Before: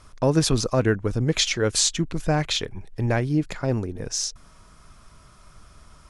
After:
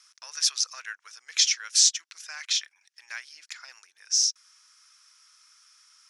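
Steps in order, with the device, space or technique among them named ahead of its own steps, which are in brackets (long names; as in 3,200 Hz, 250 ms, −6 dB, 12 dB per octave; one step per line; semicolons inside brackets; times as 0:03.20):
headphones lying on a table (high-pass filter 1,500 Hz 24 dB per octave; parametric band 5,600 Hz +12 dB 0.5 octaves)
level −4.5 dB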